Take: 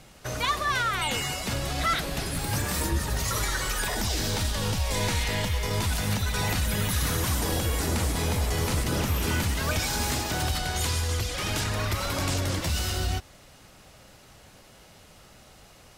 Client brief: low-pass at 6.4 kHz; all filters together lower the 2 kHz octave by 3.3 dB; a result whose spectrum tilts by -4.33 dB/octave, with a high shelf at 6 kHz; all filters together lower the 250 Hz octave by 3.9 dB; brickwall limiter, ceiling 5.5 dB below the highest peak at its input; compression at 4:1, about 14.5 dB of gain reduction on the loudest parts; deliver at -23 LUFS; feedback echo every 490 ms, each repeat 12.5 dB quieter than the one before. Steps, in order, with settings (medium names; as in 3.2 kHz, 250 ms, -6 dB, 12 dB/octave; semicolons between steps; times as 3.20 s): low-pass 6.4 kHz; peaking EQ 250 Hz -5.5 dB; peaking EQ 2 kHz -3.5 dB; treble shelf 6 kHz -6.5 dB; compression 4:1, threshold -42 dBFS; peak limiter -35.5 dBFS; feedback delay 490 ms, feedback 24%, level -12.5 dB; trim +22 dB